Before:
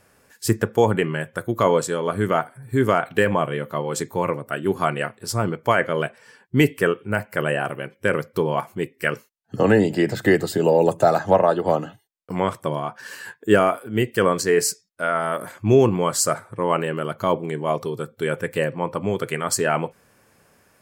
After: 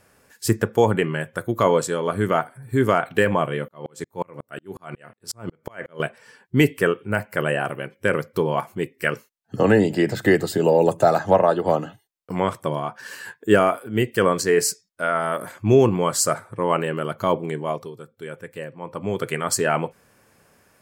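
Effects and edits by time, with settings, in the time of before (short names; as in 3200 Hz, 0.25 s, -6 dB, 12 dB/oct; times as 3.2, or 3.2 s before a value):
3.68–6 dB-ramp tremolo swelling 5.5 Hz, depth 39 dB
17.51–19.23 dip -11 dB, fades 0.43 s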